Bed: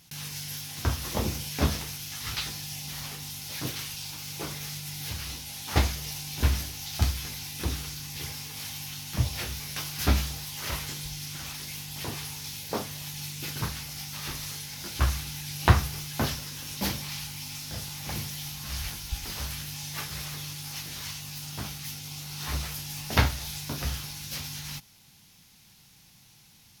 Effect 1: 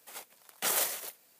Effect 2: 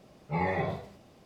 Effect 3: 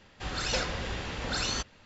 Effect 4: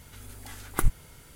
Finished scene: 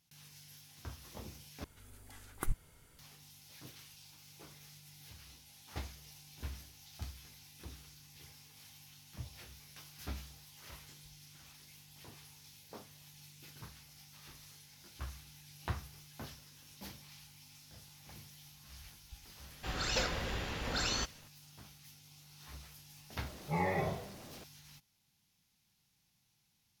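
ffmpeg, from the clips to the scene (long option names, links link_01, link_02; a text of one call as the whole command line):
ffmpeg -i bed.wav -i cue0.wav -i cue1.wav -i cue2.wav -i cue3.wav -filter_complex "[0:a]volume=-19.5dB[link_01];[2:a]aeval=exprs='val(0)+0.5*0.00562*sgn(val(0))':channel_layout=same[link_02];[link_01]asplit=2[link_03][link_04];[link_03]atrim=end=1.644[link_05];[4:a]atrim=end=1.35,asetpts=PTS-STARTPTS,volume=-11.5dB[link_06];[link_04]atrim=start=2.986[link_07];[3:a]atrim=end=1.85,asetpts=PTS-STARTPTS,volume=-3.5dB,afade=type=in:duration=0.004:curve=hsin,afade=type=out:start_time=1.846:duration=0.004:curve=hsin,adelay=19430[link_08];[link_02]atrim=end=1.25,asetpts=PTS-STARTPTS,volume=-4.5dB,afade=type=in:duration=0.004:curve=hsin,afade=type=out:start_time=1.246:duration=0.004:curve=hsin,adelay=23190[link_09];[link_05][link_06]acrossfade=duration=0.004:curve1=hsin:curve2=hsin[link_10];[link_10][link_07]acrossfade=duration=0.004:curve1=hsin:curve2=hsin[link_11];[link_11][link_08][link_09]amix=inputs=3:normalize=0" out.wav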